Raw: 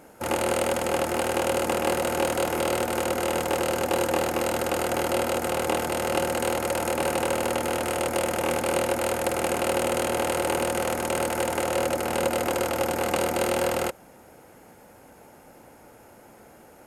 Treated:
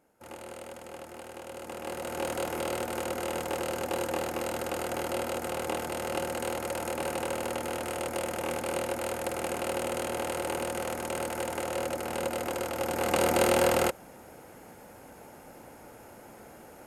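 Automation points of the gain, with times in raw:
1.46 s -18.5 dB
2.3 s -7 dB
12.74 s -7 dB
13.31 s +1 dB

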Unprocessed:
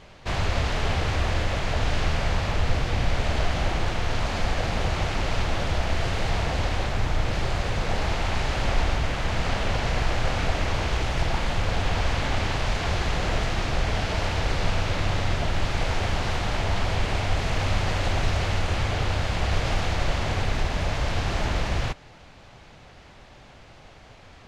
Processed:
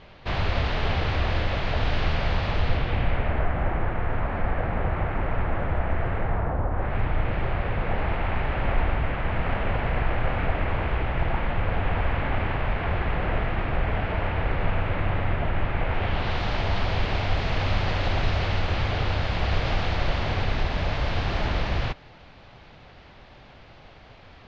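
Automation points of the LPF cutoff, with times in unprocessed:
LPF 24 dB/oct
2.61 s 4400 Hz
3.46 s 2000 Hz
6.17 s 2000 Hz
6.69 s 1300 Hz
6.96 s 2500 Hz
15.86 s 2500 Hz
16.42 s 4700 Hz

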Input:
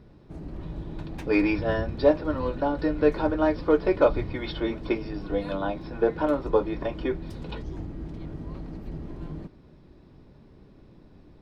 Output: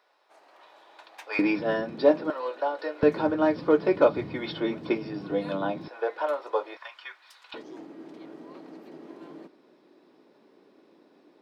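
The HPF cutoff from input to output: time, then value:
HPF 24 dB/oct
700 Hz
from 1.39 s 180 Hz
from 2.3 s 470 Hz
from 3.03 s 130 Hz
from 5.88 s 530 Hz
from 6.77 s 1100 Hz
from 7.54 s 290 Hz

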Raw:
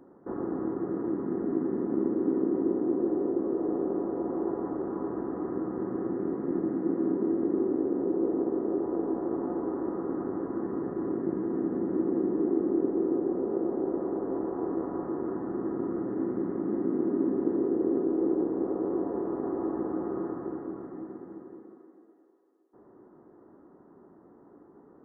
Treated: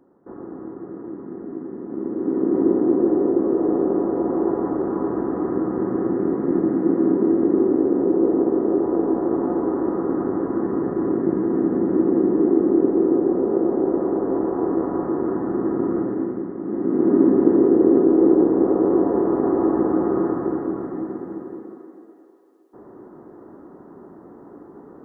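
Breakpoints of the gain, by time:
1.82 s -3 dB
2.62 s +9.5 dB
16 s +9.5 dB
16.55 s +0.5 dB
17.13 s +12 dB

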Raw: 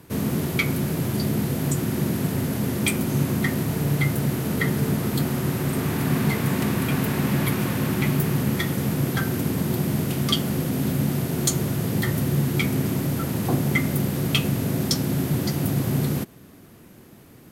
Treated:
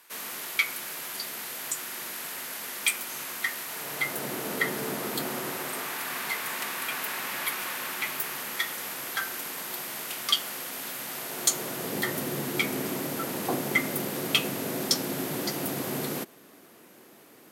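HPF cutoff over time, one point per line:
3.66 s 1200 Hz
4.31 s 460 Hz
5.37 s 460 Hz
6.02 s 1000 Hz
11.04 s 1000 Hz
11.97 s 380 Hz

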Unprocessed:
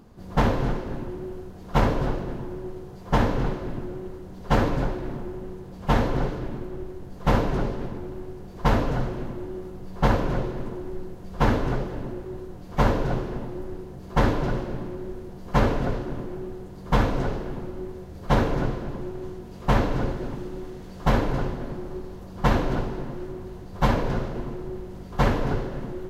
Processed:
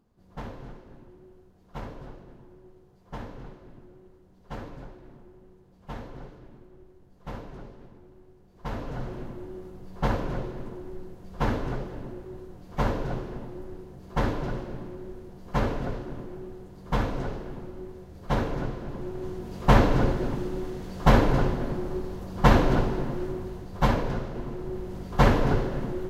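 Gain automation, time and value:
8.48 s -17.5 dB
9.13 s -5.5 dB
18.73 s -5.5 dB
19.49 s +3 dB
23.31 s +3 dB
24.24 s -4.5 dB
24.93 s +2 dB

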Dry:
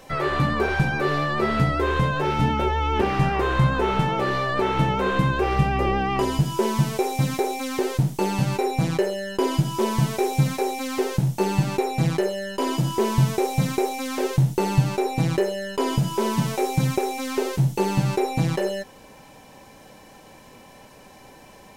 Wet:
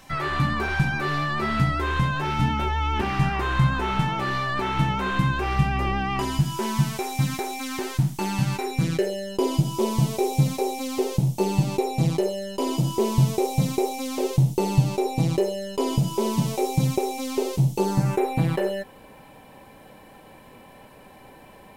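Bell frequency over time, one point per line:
bell -13.5 dB 0.78 oct
8.59 s 480 Hz
9.28 s 1600 Hz
17.76 s 1600 Hz
18.26 s 6000 Hz

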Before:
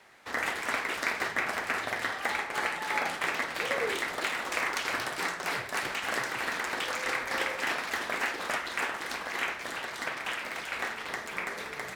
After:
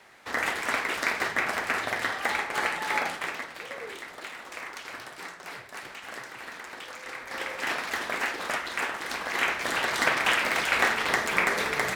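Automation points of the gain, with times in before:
2.95 s +3 dB
3.64 s -8.5 dB
7.1 s -8.5 dB
7.72 s +1.5 dB
9.02 s +1.5 dB
9.95 s +10.5 dB

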